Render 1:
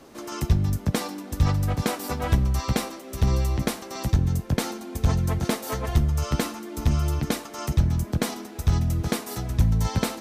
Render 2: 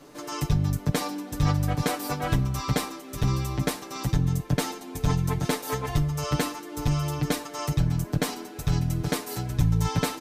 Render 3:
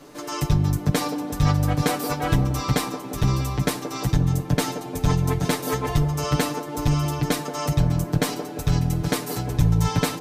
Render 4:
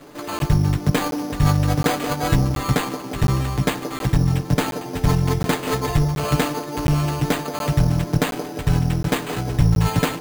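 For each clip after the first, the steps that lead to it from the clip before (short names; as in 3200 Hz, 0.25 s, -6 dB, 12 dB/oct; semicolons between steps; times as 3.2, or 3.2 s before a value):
comb 6.8 ms, depth 85%; gain -2.5 dB
band-limited delay 0.177 s, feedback 67%, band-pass 470 Hz, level -7 dB; gain +3.5 dB
careless resampling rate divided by 8×, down none, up hold; crackling interface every 0.72 s, samples 512, zero, from 0.39; gain +2.5 dB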